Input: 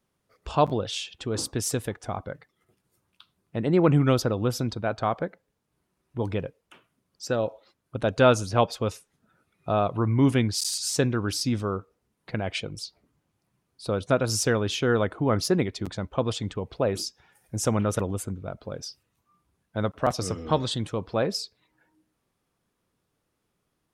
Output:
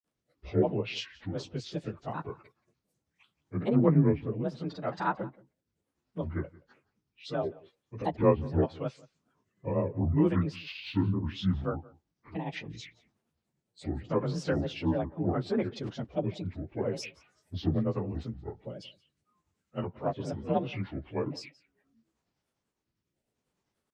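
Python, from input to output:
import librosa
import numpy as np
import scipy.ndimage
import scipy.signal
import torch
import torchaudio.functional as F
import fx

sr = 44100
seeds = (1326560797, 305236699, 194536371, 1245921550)

p1 = fx.partial_stretch(x, sr, pct=89)
p2 = fx.env_lowpass_down(p1, sr, base_hz=1700.0, full_db=-23.5)
p3 = fx.rotary(p2, sr, hz=0.75)
p4 = fx.granulator(p3, sr, seeds[0], grain_ms=180.0, per_s=10.0, spray_ms=25.0, spread_st=7)
y = p4 + fx.echo_single(p4, sr, ms=175, db=-22.5, dry=0)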